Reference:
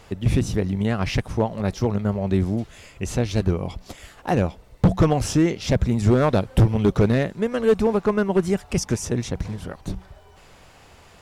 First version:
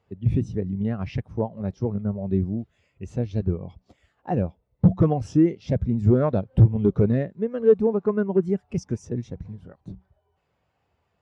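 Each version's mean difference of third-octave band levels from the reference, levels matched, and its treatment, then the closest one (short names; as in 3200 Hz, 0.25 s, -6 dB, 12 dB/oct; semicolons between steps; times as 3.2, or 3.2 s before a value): 11.0 dB: HPF 65 Hz; high shelf 10000 Hz -11.5 dB; spectral expander 1.5:1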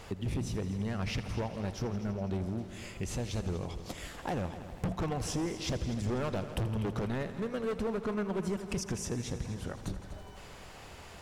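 7.5 dB: hard clip -18 dBFS, distortion -9 dB; compressor 3:1, threshold -36 dBFS, peak gain reduction 12 dB; multi-head echo 82 ms, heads all three, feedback 59%, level -16.5 dB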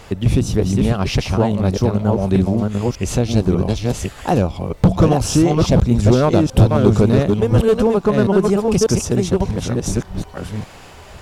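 4.5 dB: reverse delay 0.591 s, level -3 dB; dynamic EQ 1900 Hz, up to -8 dB, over -46 dBFS, Q 2.1; in parallel at +0.5 dB: compressor, threshold -26 dBFS, peak gain reduction 15 dB; on the sum: gain +2 dB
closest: third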